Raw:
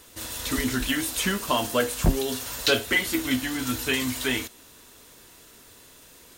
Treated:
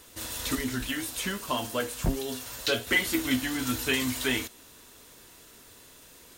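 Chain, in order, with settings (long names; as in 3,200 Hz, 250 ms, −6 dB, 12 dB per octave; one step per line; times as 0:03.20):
0:00.55–0:02.87: flanger 1.2 Hz, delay 6.7 ms, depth 2.8 ms, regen +73%
level −1.5 dB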